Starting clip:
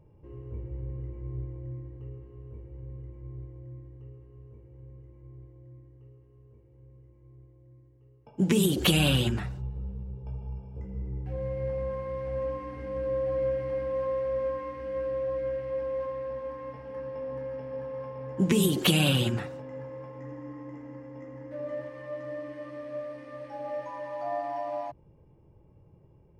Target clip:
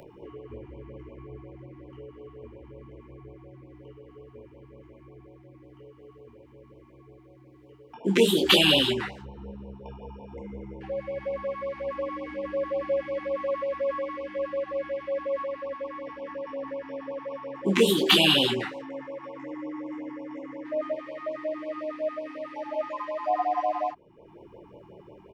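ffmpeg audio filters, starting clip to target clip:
ffmpeg -i in.wav -filter_complex "[0:a]acrossover=split=270 4700:gain=0.0794 1 0.251[link_01][link_02][link_03];[link_01][link_02][link_03]amix=inputs=3:normalize=0,asplit=2[link_04][link_05];[link_05]acompressor=mode=upward:threshold=-38dB:ratio=2.5,volume=1.5dB[link_06];[link_04][link_06]amix=inputs=2:normalize=0,aecho=1:1:16|27:0.316|0.631,asetrate=45938,aresample=44100,afftfilt=real='re*(1-between(b*sr/1024,480*pow(1600/480,0.5+0.5*sin(2*PI*5.5*pts/sr))/1.41,480*pow(1600/480,0.5+0.5*sin(2*PI*5.5*pts/sr))*1.41))':imag='im*(1-between(b*sr/1024,480*pow(1600/480,0.5+0.5*sin(2*PI*5.5*pts/sr))/1.41,480*pow(1600/480,0.5+0.5*sin(2*PI*5.5*pts/sr))*1.41))':win_size=1024:overlap=0.75" out.wav

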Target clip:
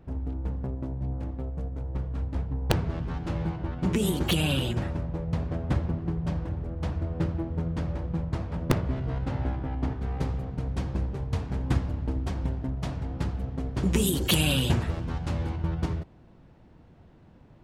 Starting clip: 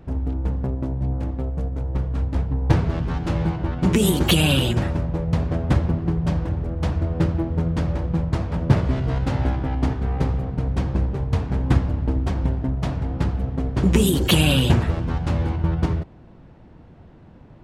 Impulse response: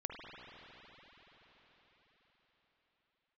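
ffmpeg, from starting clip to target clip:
-af "aeval=exprs='(mod(1.58*val(0)+1,2)-1)/1.58':channel_layout=same,asetnsamples=nb_out_samples=441:pad=0,asendcmd='8.78 highshelf g -7.5;10.01 highshelf g 6',highshelf=frequency=3700:gain=-2,volume=-7.5dB"

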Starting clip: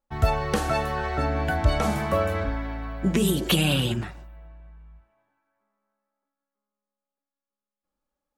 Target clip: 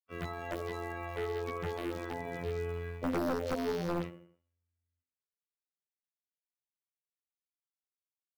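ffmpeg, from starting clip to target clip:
ffmpeg -i in.wav -filter_complex "[0:a]agate=range=-35dB:threshold=-32dB:ratio=16:detection=peak,acrossover=split=440 2100:gain=0.224 1 0.178[link_01][link_02][link_03];[link_01][link_02][link_03]amix=inputs=3:normalize=0,acrossover=split=270|590|6800[link_04][link_05][link_06][link_07];[link_06]alimiter=level_in=3dB:limit=-24dB:level=0:latency=1:release=309,volume=-3dB[link_08];[link_04][link_05][link_08][link_07]amix=inputs=4:normalize=0,acrossover=split=150|1100|4400[link_09][link_10][link_11][link_12];[link_09]acompressor=threshold=-47dB:ratio=4[link_13];[link_10]acompressor=threshold=-33dB:ratio=4[link_14];[link_11]acompressor=threshold=-47dB:ratio=4[link_15];[link_12]acompressor=threshold=-52dB:ratio=4[link_16];[link_13][link_14][link_15][link_16]amix=inputs=4:normalize=0,lowshelf=frequency=470:width_type=q:width=1.5:gain=10,bandreject=frequency=81.99:width_type=h:width=4,bandreject=frequency=163.98:width_type=h:width=4,bandreject=frequency=245.97:width_type=h:width=4,bandreject=frequency=327.96:width_type=h:width=4,bandreject=frequency=409.95:width_type=h:width=4,bandreject=frequency=491.94:width_type=h:width=4,bandreject=frequency=573.93:width_type=h:width=4,bandreject=frequency=655.92:width_type=h:width=4,bandreject=frequency=737.91:width_type=h:width=4,bandreject=frequency=819.9:width_type=h:width=4,bandreject=frequency=901.89:width_type=h:width=4,bandreject=frequency=983.88:width_type=h:width=4,bandreject=frequency=1065.87:width_type=h:width=4,bandreject=frequency=1147.86:width_type=h:width=4,bandreject=frequency=1229.85:width_type=h:width=4,bandreject=frequency=1311.84:width_type=h:width=4,bandreject=frequency=1393.83:width_type=h:width=4,bandreject=frequency=1475.82:width_type=h:width=4,bandreject=frequency=1557.81:width_type=h:width=4,bandreject=frequency=1639.8:width_type=h:width=4,bandreject=frequency=1721.79:width_type=h:width=4,bandreject=frequency=1803.78:width_type=h:width=4,bandreject=frequency=1885.77:width_type=h:width=4,bandreject=frequency=1967.76:width_type=h:width=4,bandreject=frequency=2049.75:width_type=h:width=4,bandreject=frequency=2131.74:width_type=h:width=4,bandreject=frequency=2213.73:width_type=h:width=4,bandreject=frequency=2295.72:width_type=h:width=4,asetrate=66075,aresample=44100,atempo=0.66742,asplit=2[link_17][link_18];[link_18]adelay=80,lowpass=frequency=2300:poles=1,volume=-17.5dB,asplit=2[link_19][link_20];[link_20]adelay=80,lowpass=frequency=2300:poles=1,volume=0.5,asplit=2[link_21][link_22];[link_22]adelay=80,lowpass=frequency=2300:poles=1,volume=0.5,asplit=2[link_23][link_24];[link_24]adelay=80,lowpass=frequency=2300:poles=1,volume=0.5[link_25];[link_17][link_19][link_21][link_23][link_25]amix=inputs=5:normalize=0,acrusher=bits=8:mode=log:mix=0:aa=0.000001,afftfilt=real='hypot(re,im)*cos(PI*b)':imag='0':win_size=2048:overlap=0.75,highpass=51,aeval=exprs='0.0501*(abs(mod(val(0)/0.0501+3,4)-2)-1)':channel_layout=same" out.wav

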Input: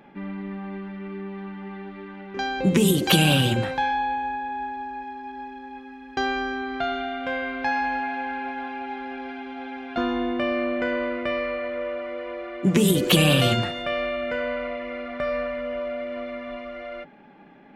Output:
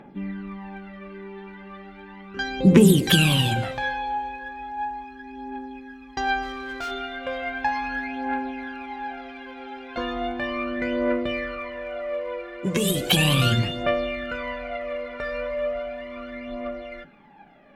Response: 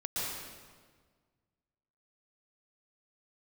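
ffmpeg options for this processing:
-filter_complex "[0:a]aphaser=in_gain=1:out_gain=1:delay=2.3:decay=0.65:speed=0.36:type=triangular,asplit=3[link_01][link_02][link_03];[link_01]afade=type=out:start_time=6.42:duration=0.02[link_04];[link_02]volume=25.5dB,asoftclip=hard,volume=-25.5dB,afade=type=in:start_time=6.42:duration=0.02,afade=type=out:start_time=6.9:duration=0.02[link_05];[link_03]afade=type=in:start_time=6.9:duration=0.02[link_06];[link_04][link_05][link_06]amix=inputs=3:normalize=0,asplit=2[link_07][link_08];[1:a]atrim=start_sample=2205,afade=type=out:start_time=0.36:duration=0.01,atrim=end_sample=16317[link_09];[link_08][link_09]afir=irnorm=-1:irlink=0,volume=-23dB[link_10];[link_07][link_10]amix=inputs=2:normalize=0,volume=-3dB"

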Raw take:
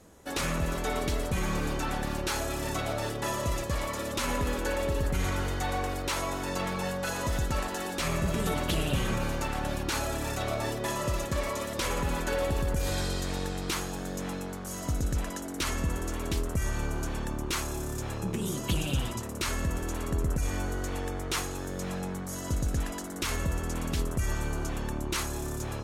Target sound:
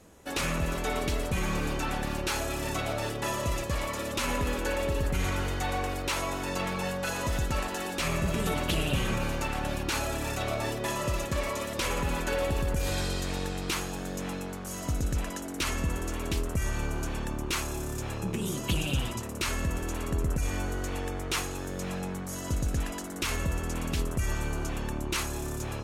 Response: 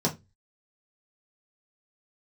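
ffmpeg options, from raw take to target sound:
-af "equalizer=frequency=2600:width_type=o:width=0.43:gain=4"

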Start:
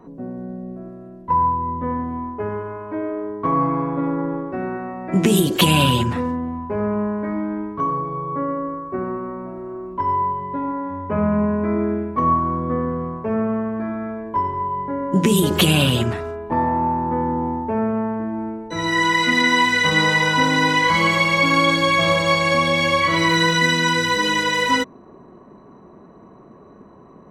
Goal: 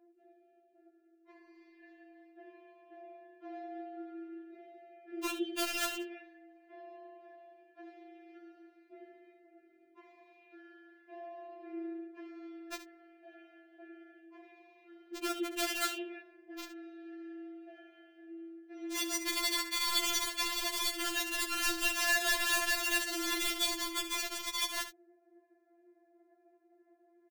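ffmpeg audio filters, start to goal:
ffmpeg -i in.wav -filter_complex "[0:a]tremolo=f=58:d=0.4,bass=frequency=250:gain=-5,treble=frequency=4000:gain=-12,asplit=2[link_01][link_02];[link_02]aeval=exprs='sgn(val(0))*max(abs(val(0))-0.0188,0)':channel_layout=same,volume=-10dB[link_03];[link_01][link_03]amix=inputs=2:normalize=0,asplit=3[link_04][link_05][link_06];[link_04]bandpass=frequency=530:width_type=q:width=8,volume=0dB[link_07];[link_05]bandpass=frequency=1840:width_type=q:width=8,volume=-6dB[link_08];[link_06]bandpass=frequency=2480:width_type=q:width=8,volume=-9dB[link_09];[link_07][link_08][link_09]amix=inputs=3:normalize=0,highshelf=frequency=7600:width_type=q:width=1.5:gain=-11,aeval=exprs='(mod(14.1*val(0)+1,2)-1)/14.1':channel_layout=same,asplit=2[link_10][link_11];[link_11]aecho=0:1:70:0.251[link_12];[link_10][link_12]amix=inputs=2:normalize=0,afftfilt=real='re*4*eq(mod(b,16),0)':imag='im*4*eq(mod(b,16),0)':win_size=2048:overlap=0.75" out.wav

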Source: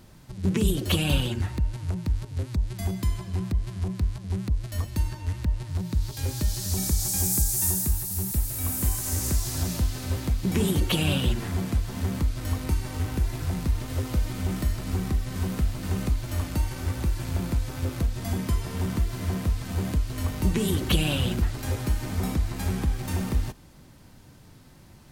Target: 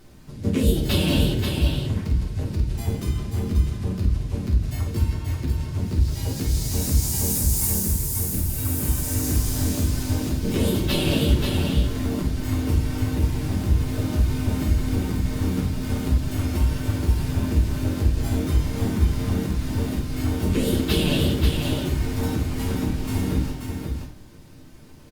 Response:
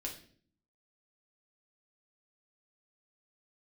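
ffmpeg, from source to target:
-filter_complex "[0:a]asplit=3[link_01][link_02][link_03];[link_02]asetrate=52444,aresample=44100,atempo=0.840896,volume=-2dB[link_04];[link_03]asetrate=66075,aresample=44100,atempo=0.66742,volume=-12dB[link_05];[link_01][link_04][link_05]amix=inputs=3:normalize=0,aecho=1:1:534:0.562[link_06];[1:a]atrim=start_sample=2205[link_07];[link_06][link_07]afir=irnorm=-1:irlink=0" -ar 48000 -c:a libopus -b:a 64k

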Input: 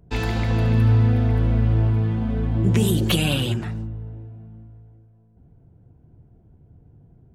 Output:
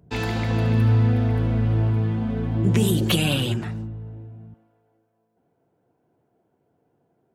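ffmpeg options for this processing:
ffmpeg -i in.wav -af "asetnsamples=nb_out_samples=441:pad=0,asendcmd='4.54 highpass f 480',highpass=86" out.wav

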